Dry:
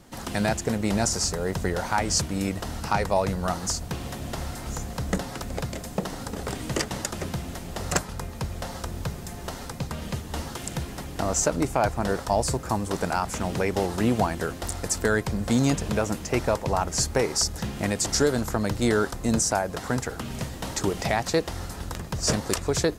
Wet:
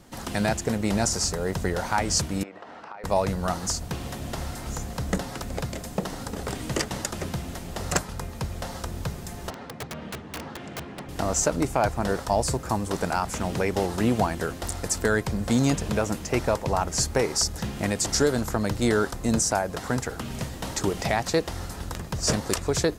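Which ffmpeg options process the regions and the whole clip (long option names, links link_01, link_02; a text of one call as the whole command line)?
ffmpeg -i in.wav -filter_complex "[0:a]asettb=1/sr,asplit=3[link_01][link_02][link_03];[link_01]atrim=end=2.434[link_04];[link_02]atrim=start=2.43:end=3.04,asetpts=PTS-STARTPTS,afade=type=in:duration=0.004:curve=qsin,afade=type=out:start_time=0.606:duration=0.004:curve=qsin,highpass=450,lowpass=2000,acompressor=threshold=-38dB:ratio=5:attack=3.2:release=140:knee=1:detection=peak[link_05];[link_03]atrim=start=3.036[link_06];[link_04][link_05]acrossfade=duration=0.004:curve1=hsin:curve2=qsin[link_07];[link_07][link_06]acrossfade=duration=0.004:curve1=qsin:curve2=hsin,asettb=1/sr,asplit=3[link_08][link_09][link_10];[link_08]atrim=end=9.504[link_11];[link_09]atrim=start=9.5:end=11.09,asetpts=PTS-STARTPTS,afade=type=in:duration=0.004:curve=qsin,afade=type=out:start_time=1.586:duration=0.004:curve=qsin,highpass=140,lowpass=2400,aeval=exprs='(mod(23.7*val(0)+1,2)-1)/23.7':channel_layout=same[link_12];[link_10]atrim=start=11.086[link_13];[link_11][link_12]acrossfade=duration=0.004:curve1=hsin:curve2=qsin[link_14];[link_14][link_13]acrossfade=duration=0.004:curve1=qsin:curve2=hsin" out.wav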